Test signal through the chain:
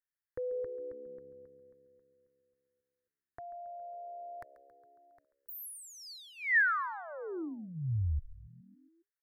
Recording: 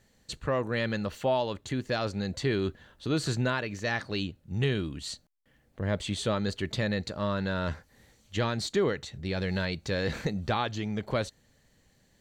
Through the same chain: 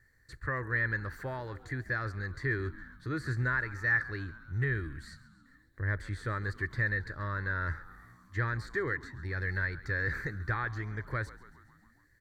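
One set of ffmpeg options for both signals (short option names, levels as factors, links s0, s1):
-filter_complex "[0:a]acrossover=split=2900[s0][s1];[s1]acompressor=threshold=0.00891:ratio=4:attack=1:release=60[s2];[s0][s2]amix=inputs=2:normalize=0,firequalizer=gain_entry='entry(120,0);entry(190,-17);entry(320,-6);entry(690,-17);entry(1100,-4);entry(1800,8);entry(2800,-24);entry(4500,-9);entry(6500,-13);entry(11000,-4)':delay=0.05:min_phase=1,asplit=7[s3][s4][s5][s6][s7][s8][s9];[s4]adelay=137,afreqshift=-68,volume=0.133[s10];[s5]adelay=274,afreqshift=-136,volume=0.0822[s11];[s6]adelay=411,afreqshift=-204,volume=0.0513[s12];[s7]adelay=548,afreqshift=-272,volume=0.0316[s13];[s8]adelay=685,afreqshift=-340,volume=0.0197[s14];[s9]adelay=822,afreqshift=-408,volume=0.0122[s15];[s3][s10][s11][s12][s13][s14][s15]amix=inputs=7:normalize=0"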